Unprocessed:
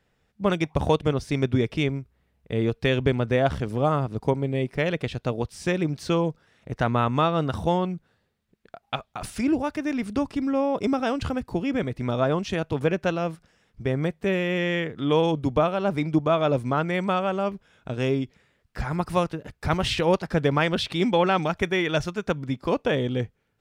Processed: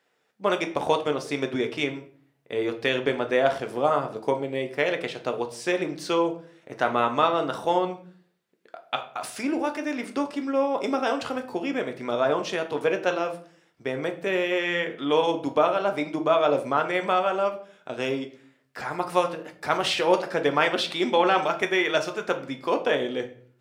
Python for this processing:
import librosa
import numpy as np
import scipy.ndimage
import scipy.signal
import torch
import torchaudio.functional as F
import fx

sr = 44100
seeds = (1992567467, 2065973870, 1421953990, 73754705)

y = scipy.signal.sosfilt(scipy.signal.butter(2, 390.0, 'highpass', fs=sr, output='sos'), x)
y = fx.room_shoebox(y, sr, seeds[0], volume_m3=48.0, walls='mixed', distance_m=0.34)
y = y * 10.0 ** (1.0 / 20.0)